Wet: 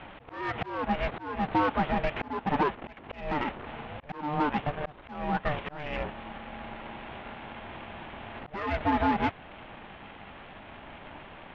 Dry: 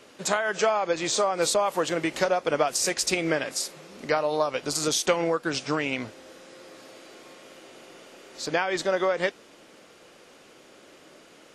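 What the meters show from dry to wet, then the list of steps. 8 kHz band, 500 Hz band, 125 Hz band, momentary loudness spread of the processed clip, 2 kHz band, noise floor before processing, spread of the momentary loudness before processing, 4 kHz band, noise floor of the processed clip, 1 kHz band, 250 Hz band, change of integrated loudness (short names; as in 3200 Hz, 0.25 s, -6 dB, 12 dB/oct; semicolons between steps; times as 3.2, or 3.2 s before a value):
under -35 dB, -9.5 dB, +2.5 dB, 19 LU, -5.5 dB, -53 dBFS, 6 LU, -12.5 dB, -49 dBFS, 0.0 dB, 0.0 dB, -6.0 dB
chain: CVSD 16 kbps; in parallel at -2 dB: compressor, threshold -35 dBFS, peak gain reduction 15 dB; on the sum: soft clip -21.5 dBFS, distortion -13 dB; bell 730 Hz +2.5 dB 1.7 oct; ring modulator 300 Hz; auto swell 0.334 s; gain +3 dB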